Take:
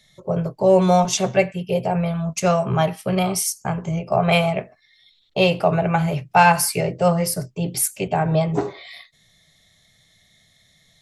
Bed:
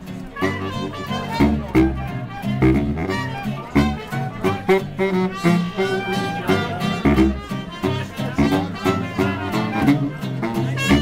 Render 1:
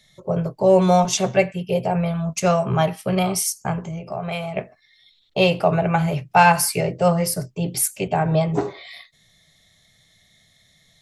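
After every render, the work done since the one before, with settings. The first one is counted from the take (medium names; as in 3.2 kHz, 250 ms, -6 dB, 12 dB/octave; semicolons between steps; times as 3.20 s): 3.85–4.57 s: compression 2:1, threshold -32 dBFS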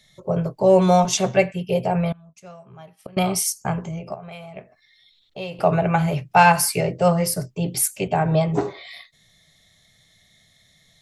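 2.12–3.17 s: inverted gate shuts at -22 dBFS, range -24 dB; 4.14–5.59 s: compression 1.5:1, threshold -54 dBFS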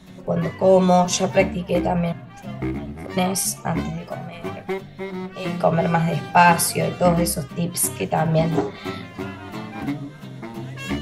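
add bed -11 dB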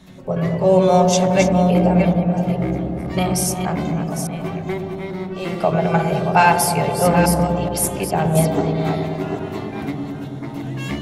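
chunks repeated in reverse 427 ms, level -7 dB; on a send: feedback echo behind a low-pass 106 ms, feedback 81%, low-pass 680 Hz, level -4.5 dB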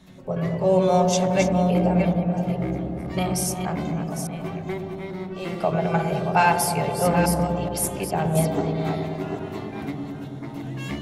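trim -5 dB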